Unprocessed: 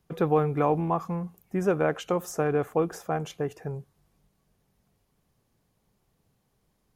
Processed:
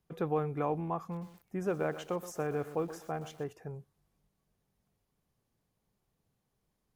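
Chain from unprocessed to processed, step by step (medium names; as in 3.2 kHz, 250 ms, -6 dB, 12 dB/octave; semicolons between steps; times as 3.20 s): 0.99–3.51 s: bit-crushed delay 124 ms, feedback 35%, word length 7-bit, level -12.5 dB; trim -8.5 dB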